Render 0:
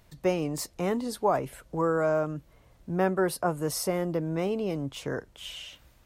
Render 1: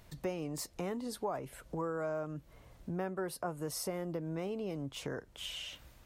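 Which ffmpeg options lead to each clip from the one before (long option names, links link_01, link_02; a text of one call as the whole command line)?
ffmpeg -i in.wav -af "acompressor=threshold=-41dB:ratio=2.5,volume=1dB" out.wav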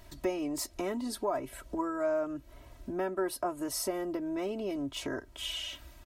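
ffmpeg -i in.wav -af "aecho=1:1:3.1:0.87,volume=2.5dB" out.wav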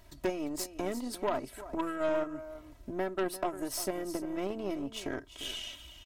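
ffmpeg -i in.wav -af "aecho=1:1:348:0.251,aeval=exprs='0.119*(cos(1*acos(clip(val(0)/0.119,-1,1)))-cos(1*PI/2))+0.0211*(cos(4*acos(clip(val(0)/0.119,-1,1)))-cos(4*PI/2))+0.0299*(cos(6*acos(clip(val(0)/0.119,-1,1)))-cos(6*PI/2))+0.00596*(cos(7*acos(clip(val(0)/0.119,-1,1)))-cos(7*PI/2))+0.0075*(cos(8*acos(clip(val(0)/0.119,-1,1)))-cos(8*PI/2))':channel_layout=same" out.wav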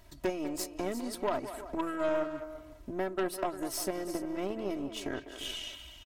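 ffmpeg -i in.wav -filter_complex "[0:a]asplit=2[link_01][link_02];[link_02]adelay=200,highpass=300,lowpass=3400,asoftclip=type=hard:threshold=-26dB,volume=-10dB[link_03];[link_01][link_03]amix=inputs=2:normalize=0" out.wav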